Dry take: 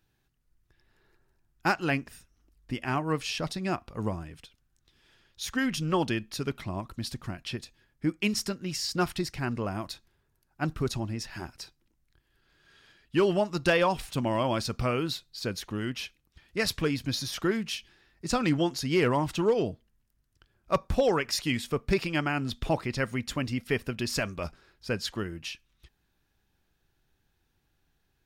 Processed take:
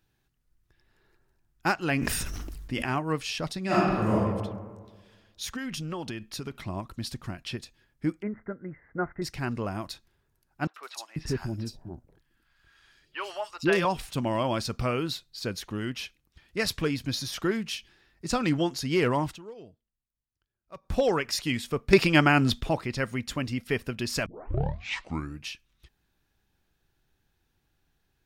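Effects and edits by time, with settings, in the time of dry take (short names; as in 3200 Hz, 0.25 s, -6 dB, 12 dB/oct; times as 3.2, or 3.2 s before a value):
1.82–2.99 sustainer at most 22 dB/s
3.65–4.14 reverb throw, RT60 1.5 s, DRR -8.5 dB
5.5–6.61 compressor 5:1, threshold -31 dBFS
8.22–9.22 rippled Chebyshev low-pass 2100 Hz, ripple 6 dB
10.67–13.85 three bands offset in time mids, highs, lows 70/490 ms, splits 670/3400 Hz
19.26–20.95 dip -19 dB, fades 0.13 s
21.93–22.61 gain +8.5 dB
24.26 tape start 1.22 s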